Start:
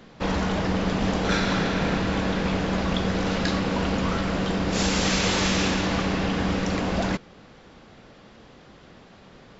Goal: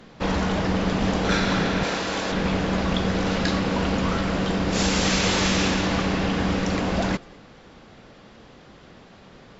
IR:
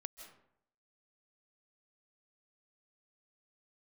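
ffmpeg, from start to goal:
-filter_complex "[0:a]asettb=1/sr,asplit=3[a][b][c];[a]atrim=end=1.834[d];[b]atrim=start=1.83:end=2.32,asetpts=PTS-STARTPTS,afade=t=in:d=0.004:c=qsin,afade=t=out:st=0.486:d=0.004:c=qsin,bass=f=250:g=-13,treble=f=4k:g=8[e];[c]atrim=start=2.316[f];[d][e]acrossfade=d=0.004:c1=hsin:c2=qsin[g];[g][f]acrossfade=d=0.004:c1=qsin:c2=hsin[h];[1:a]atrim=start_sample=2205,afade=t=out:st=0.18:d=0.01,atrim=end_sample=8379,asetrate=28224,aresample=44100[i];[h][i]afir=irnorm=-1:irlink=0,volume=4dB"

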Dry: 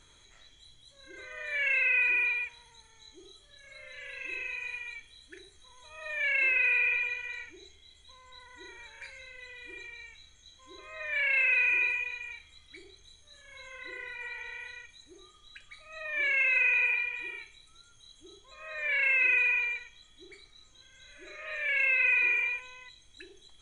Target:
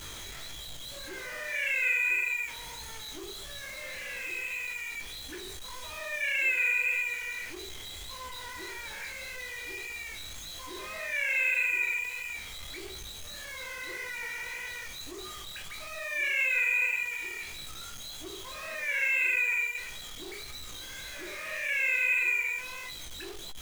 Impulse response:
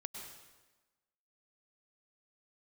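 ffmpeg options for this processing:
-af "aeval=exprs='val(0)+0.5*0.02*sgn(val(0))':c=same,flanger=delay=15.5:depth=7.9:speed=1.7"

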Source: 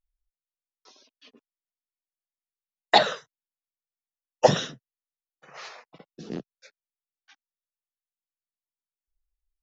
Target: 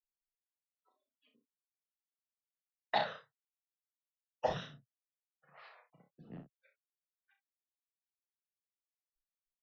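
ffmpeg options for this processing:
-filter_complex "[0:a]lowpass=3.2k,afftdn=nr=33:nf=-52,firequalizer=gain_entry='entry(110,0);entry(190,-7);entry(370,-15);entry(650,-7)':delay=0.05:min_phase=1,aecho=1:1:34|62:0.531|0.299,acrossover=split=330[a][b];[a]aeval=exprs='0.0282*(abs(mod(val(0)/0.0282+3,4)-2)-1)':c=same[c];[c][b]amix=inputs=2:normalize=0,volume=-7.5dB"

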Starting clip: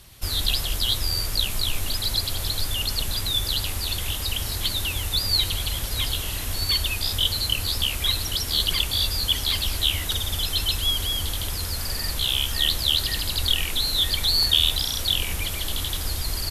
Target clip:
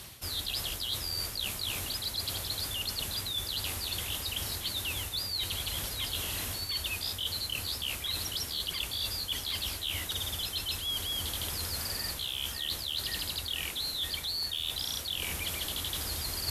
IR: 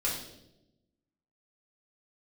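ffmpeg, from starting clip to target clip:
-filter_complex "[0:a]highpass=50,lowshelf=f=100:g=-7,asplit=2[a][b];[b]alimiter=limit=-15.5dB:level=0:latency=1:release=32,volume=-0.5dB[c];[a][c]amix=inputs=2:normalize=0,volume=8.5dB,asoftclip=hard,volume=-8.5dB,areverse,acompressor=threshold=-32dB:ratio=8,areverse"

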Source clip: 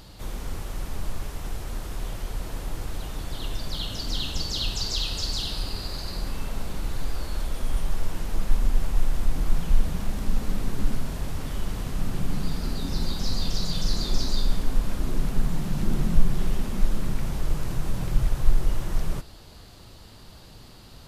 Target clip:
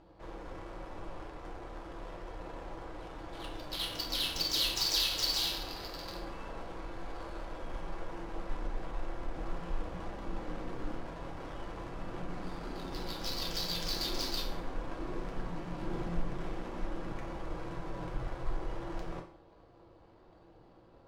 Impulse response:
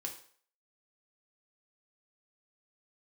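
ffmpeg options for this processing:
-filter_complex "[0:a]bass=f=250:g=-14,treble=f=4k:g=3,adynamicsmooth=sensitivity=8:basefreq=620[a];[1:a]atrim=start_sample=2205[b];[a][b]afir=irnorm=-1:irlink=0"

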